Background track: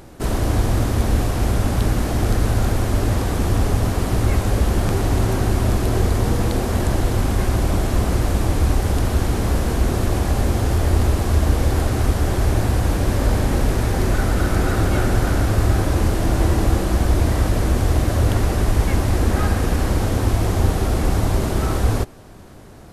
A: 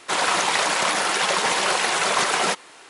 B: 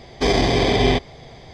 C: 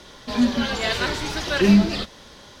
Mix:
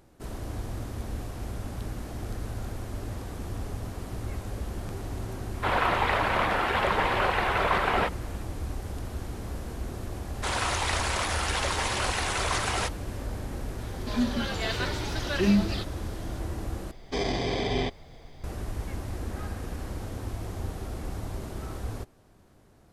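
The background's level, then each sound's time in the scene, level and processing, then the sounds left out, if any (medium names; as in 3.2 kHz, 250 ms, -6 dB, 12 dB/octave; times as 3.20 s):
background track -16.5 dB
5.54 s: add A -0.5 dB + distance through air 460 m
10.34 s: add A -8 dB
13.79 s: add C -7.5 dB
16.91 s: replace with B -11 dB + added noise brown -37 dBFS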